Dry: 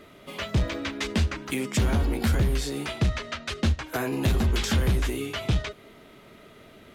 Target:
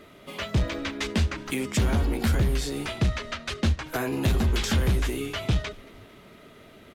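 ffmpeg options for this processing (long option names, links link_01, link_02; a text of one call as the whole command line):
ffmpeg -i in.wav -filter_complex "[0:a]asplit=5[link_01][link_02][link_03][link_04][link_05];[link_02]adelay=225,afreqshift=-81,volume=-24dB[link_06];[link_03]adelay=450,afreqshift=-162,volume=-28.4dB[link_07];[link_04]adelay=675,afreqshift=-243,volume=-32.9dB[link_08];[link_05]adelay=900,afreqshift=-324,volume=-37.3dB[link_09];[link_01][link_06][link_07][link_08][link_09]amix=inputs=5:normalize=0" out.wav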